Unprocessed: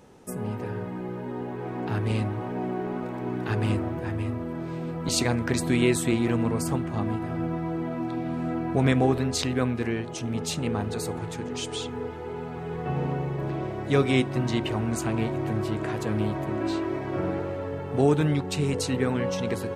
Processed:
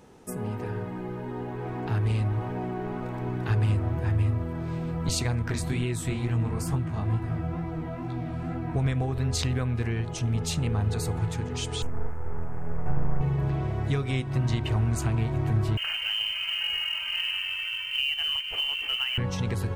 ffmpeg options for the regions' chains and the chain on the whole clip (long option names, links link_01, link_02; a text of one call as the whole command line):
ffmpeg -i in.wav -filter_complex "[0:a]asettb=1/sr,asplit=3[link_01][link_02][link_03];[link_01]atrim=end=5.424[link_04];[link_02]atrim=start=5.42:end=8.76,asetpts=PTS-STARTPTS,afade=type=in:duration=0.004:curve=qsin,afade=type=out:start_time=3.336:duration=0.004:curve=qsin,bandreject=frequency=520:width=14,flanger=delay=15.5:depth=7.4:speed=2.2[link_05];[link_03]atrim=start=8.756[link_06];[link_04][link_05]acrossfade=duration=0.004:curve1=hsin:curve2=qsin[link_07];[link_07][link_06]acrossfade=duration=0.004:curve1=qsin:curve2=hsin,asettb=1/sr,asplit=3[link_08][link_09][link_10];[link_08]atrim=end=11.824[link_11];[link_09]atrim=start=11.82:end=13.21,asetpts=PTS-STARTPTS,afade=type=in:duration=0.004:curve=qsin,afade=type=out:start_time=1.386:duration=0.004:curve=qsin,aeval=exprs='max(val(0),0)':channel_layout=same,asuperstop=centerf=3800:order=4:qfactor=0.71[link_12];[link_10]atrim=start=13.206[link_13];[link_11][link_12]acrossfade=duration=0.004:curve1=hsin:curve2=qsin[link_14];[link_14][link_13]acrossfade=duration=0.004:curve1=qsin:curve2=hsin,asettb=1/sr,asplit=3[link_15][link_16][link_17];[link_15]atrim=end=15.774[link_18];[link_16]atrim=start=15.77:end=19.18,asetpts=PTS-STARTPTS,afade=type=in:duration=0.004:curve=qsin,afade=type=out:start_time=3.406:duration=0.004:curve=qsin,lowpass=frequency=2700:width_type=q:width=0.5098,lowpass=frequency=2700:width_type=q:width=0.6013,lowpass=frequency=2700:width_type=q:width=0.9,lowpass=frequency=2700:width_type=q:width=2.563,afreqshift=-3200,acrusher=bits=6:mode=log:mix=0:aa=0.000001[link_19];[link_17]atrim=start=19.176[link_20];[link_18][link_19]acrossfade=duration=0.004:curve1=hsin:curve2=qsin[link_21];[link_21][link_20]acrossfade=duration=0.004:curve1=qsin:curve2=hsin,acompressor=threshold=-25dB:ratio=6,bandreject=frequency=560:width=17,asubboost=boost=7:cutoff=99" out.wav